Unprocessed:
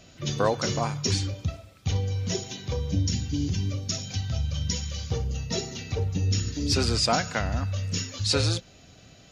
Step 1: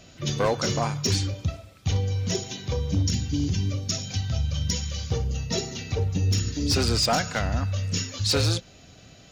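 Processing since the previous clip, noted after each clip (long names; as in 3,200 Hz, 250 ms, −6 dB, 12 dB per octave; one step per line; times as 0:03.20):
hard clipping −18.5 dBFS, distortion −18 dB
level +2 dB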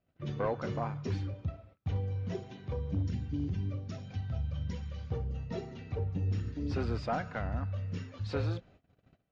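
low-pass filter 1,700 Hz 12 dB per octave
noise gate −48 dBFS, range −21 dB
level −8.5 dB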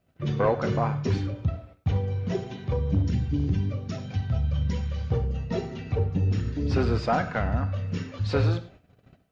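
reverb whose tail is shaped and stops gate 130 ms flat, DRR 11.5 dB
level +9 dB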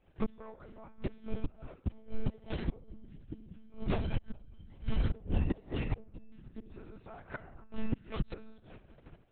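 gate with flip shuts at −20 dBFS, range −28 dB
one-pitch LPC vocoder at 8 kHz 220 Hz
level +2.5 dB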